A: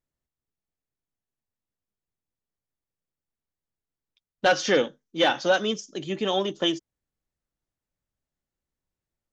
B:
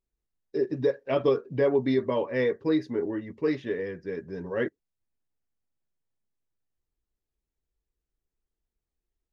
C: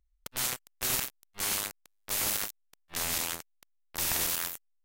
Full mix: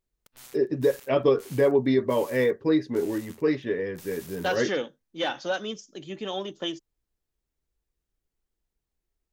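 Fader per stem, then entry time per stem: -7.0 dB, +2.5 dB, -17.5 dB; 0.00 s, 0.00 s, 0.00 s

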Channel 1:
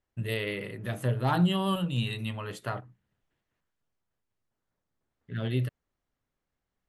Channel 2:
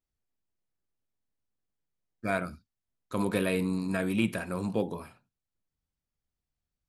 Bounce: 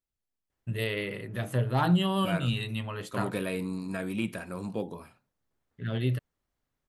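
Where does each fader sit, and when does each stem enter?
+0.5 dB, -4.0 dB; 0.50 s, 0.00 s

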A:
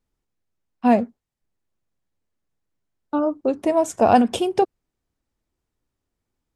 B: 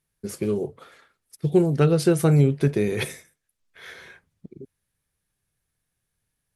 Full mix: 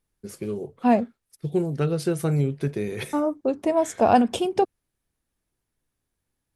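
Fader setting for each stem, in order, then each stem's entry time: -2.5 dB, -5.5 dB; 0.00 s, 0.00 s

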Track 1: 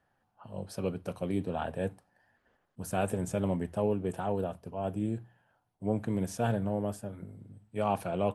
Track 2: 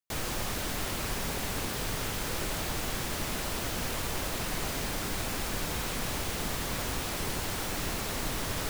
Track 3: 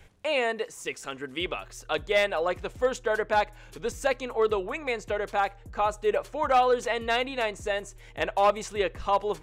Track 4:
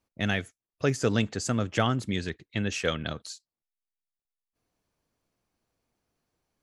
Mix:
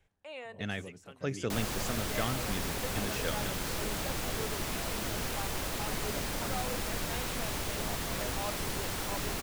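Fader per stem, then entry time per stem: -14.5 dB, -2.0 dB, -18.0 dB, -9.0 dB; 0.00 s, 1.40 s, 0.00 s, 0.40 s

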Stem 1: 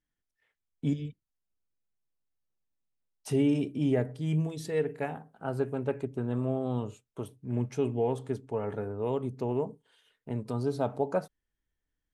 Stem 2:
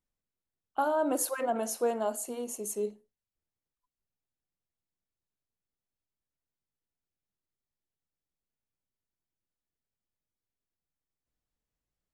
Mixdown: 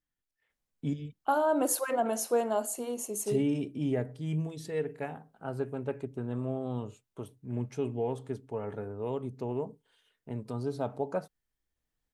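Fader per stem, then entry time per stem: -3.5 dB, +1.5 dB; 0.00 s, 0.50 s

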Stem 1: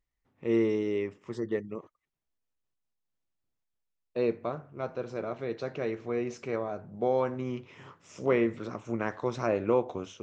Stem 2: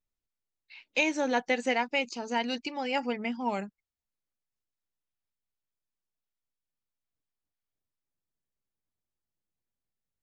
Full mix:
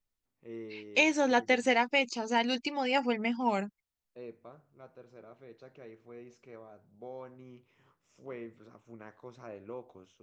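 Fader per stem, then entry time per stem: -17.5 dB, +1.5 dB; 0.00 s, 0.00 s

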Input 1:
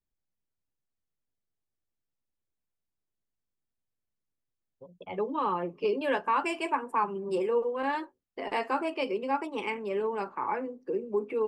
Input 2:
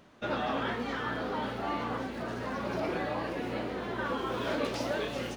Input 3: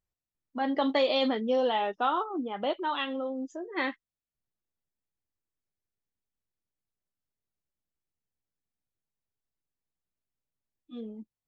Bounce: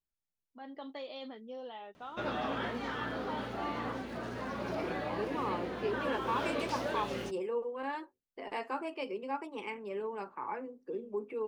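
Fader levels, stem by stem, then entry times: -7.5 dB, -3.5 dB, -18.0 dB; 0.00 s, 1.95 s, 0.00 s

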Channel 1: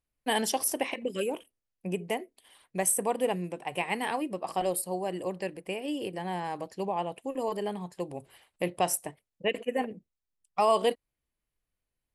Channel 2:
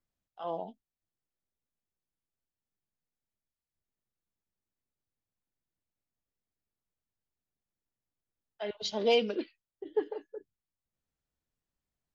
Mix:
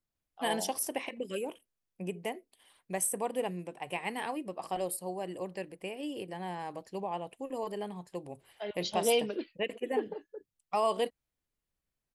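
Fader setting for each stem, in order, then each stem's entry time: -5.0 dB, -2.0 dB; 0.15 s, 0.00 s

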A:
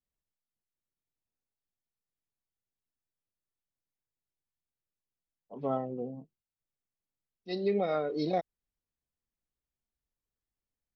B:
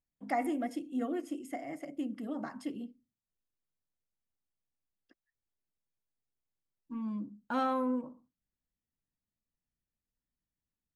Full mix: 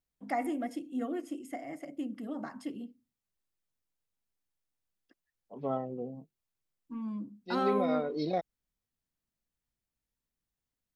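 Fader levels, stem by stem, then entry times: -1.5 dB, -0.5 dB; 0.00 s, 0.00 s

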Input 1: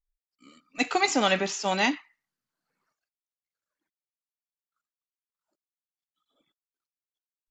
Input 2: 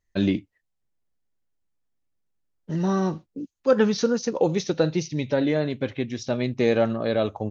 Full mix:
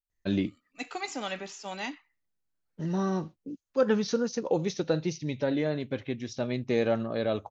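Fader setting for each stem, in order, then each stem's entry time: -11.5 dB, -5.5 dB; 0.00 s, 0.10 s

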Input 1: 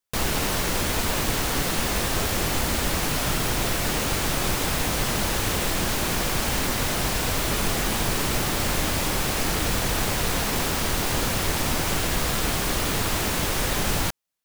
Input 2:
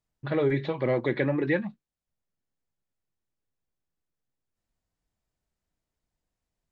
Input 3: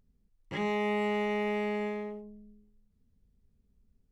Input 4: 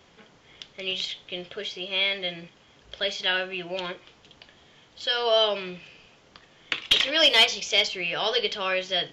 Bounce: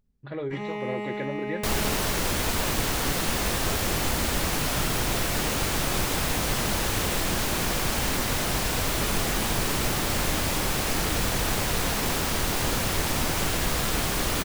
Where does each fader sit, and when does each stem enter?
-1.5 dB, -7.5 dB, -2.5 dB, mute; 1.50 s, 0.00 s, 0.00 s, mute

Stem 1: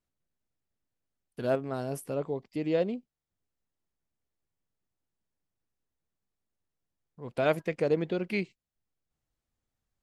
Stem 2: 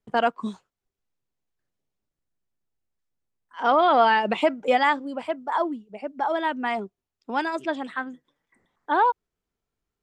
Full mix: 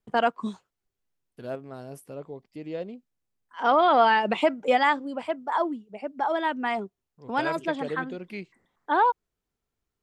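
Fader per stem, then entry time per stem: -6.5 dB, -1.0 dB; 0.00 s, 0.00 s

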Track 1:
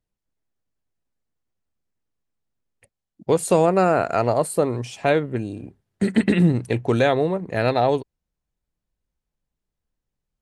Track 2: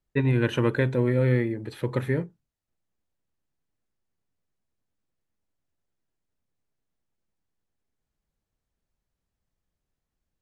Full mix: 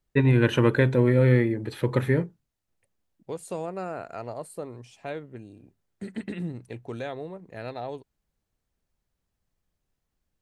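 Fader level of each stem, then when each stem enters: -16.0 dB, +3.0 dB; 0.00 s, 0.00 s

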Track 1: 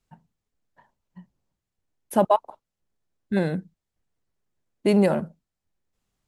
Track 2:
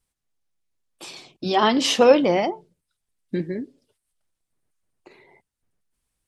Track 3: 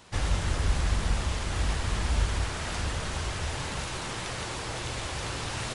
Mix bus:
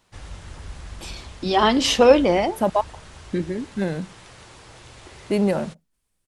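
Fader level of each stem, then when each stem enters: -1.5 dB, +1.0 dB, -11.0 dB; 0.45 s, 0.00 s, 0.00 s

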